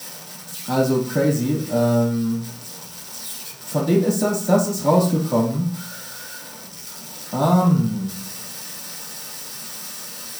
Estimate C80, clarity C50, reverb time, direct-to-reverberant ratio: 12.0 dB, 6.5 dB, 0.45 s, -5.0 dB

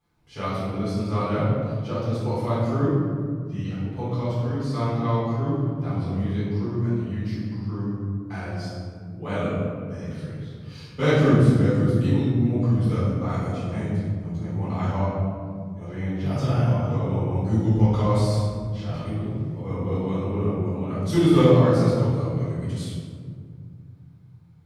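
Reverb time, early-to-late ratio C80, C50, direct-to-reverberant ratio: 2.0 s, 1.0 dB, -2.0 dB, -11.5 dB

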